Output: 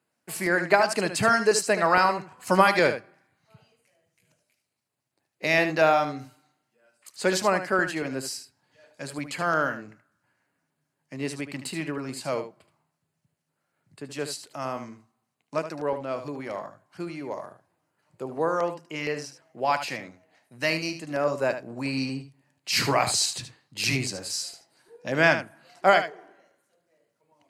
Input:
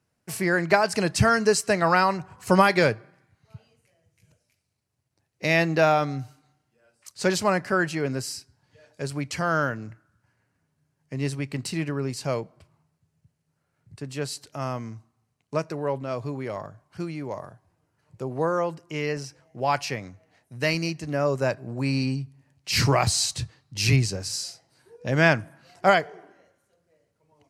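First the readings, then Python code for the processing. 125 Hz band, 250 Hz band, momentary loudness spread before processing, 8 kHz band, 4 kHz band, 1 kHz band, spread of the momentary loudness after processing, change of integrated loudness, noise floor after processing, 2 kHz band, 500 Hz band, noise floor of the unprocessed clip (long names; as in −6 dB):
−9.0 dB, −3.5 dB, 16 LU, −0.5 dB, −0.5 dB, +0.5 dB, 17 LU, −0.5 dB, −80 dBFS, +0.5 dB, −0.5 dB, −76 dBFS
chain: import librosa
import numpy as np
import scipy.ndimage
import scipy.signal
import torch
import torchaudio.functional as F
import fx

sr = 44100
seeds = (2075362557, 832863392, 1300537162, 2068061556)

y = scipy.signal.sosfilt(scipy.signal.butter(2, 240.0, 'highpass', fs=sr, output='sos'), x)
y = fx.filter_lfo_notch(y, sr, shape='square', hz=4.3, low_hz=430.0, high_hz=5700.0, q=2.7)
y = y + 10.0 ** (-10.0 / 20.0) * np.pad(y, (int(75 * sr / 1000.0), 0))[:len(y)]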